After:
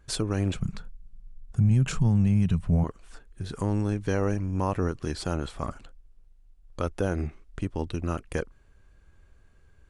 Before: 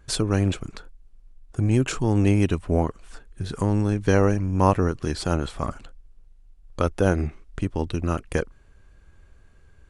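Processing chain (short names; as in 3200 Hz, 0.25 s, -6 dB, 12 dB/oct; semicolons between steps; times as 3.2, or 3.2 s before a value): 0.54–2.84 resonant low shelf 240 Hz +8.5 dB, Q 3; limiter -10 dBFS, peak gain reduction 10 dB; gain -4.5 dB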